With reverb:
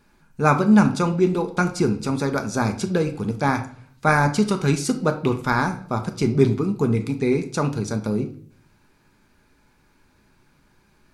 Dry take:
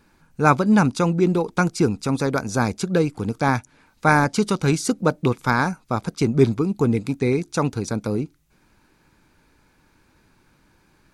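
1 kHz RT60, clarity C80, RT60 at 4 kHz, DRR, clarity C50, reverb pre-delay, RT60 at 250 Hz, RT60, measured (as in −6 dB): 0.45 s, 16.0 dB, 0.45 s, 5.5 dB, 12.0 dB, 5 ms, 0.70 s, 0.55 s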